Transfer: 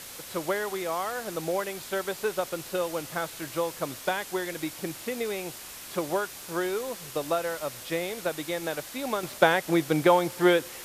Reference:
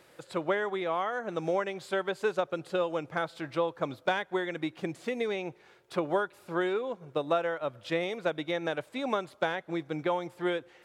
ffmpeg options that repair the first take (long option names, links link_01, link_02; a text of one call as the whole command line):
ffmpeg -i in.wav -af "afwtdn=0.0089,asetnsamples=nb_out_samples=441:pad=0,asendcmd='9.23 volume volume -9.5dB',volume=0dB" out.wav